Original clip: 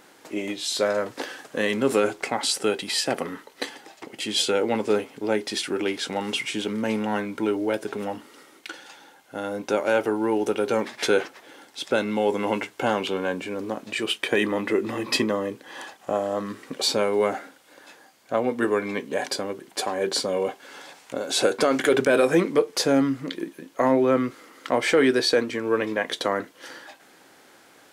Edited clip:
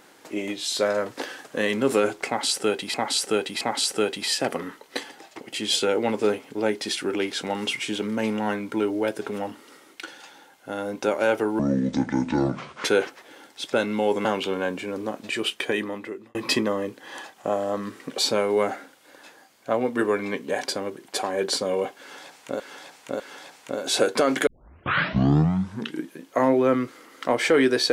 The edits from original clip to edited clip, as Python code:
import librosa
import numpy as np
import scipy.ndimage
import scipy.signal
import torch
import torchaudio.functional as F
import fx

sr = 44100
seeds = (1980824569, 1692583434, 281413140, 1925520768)

y = fx.edit(x, sr, fx.repeat(start_s=2.27, length_s=0.67, count=3),
    fx.speed_span(start_s=10.25, length_s=0.78, speed=0.62),
    fx.cut(start_s=12.43, length_s=0.45),
    fx.fade_out_span(start_s=14.07, length_s=0.91),
    fx.repeat(start_s=20.63, length_s=0.6, count=3),
    fx.tape_start(start_s=21.9, length_s=1.64), tone=tone)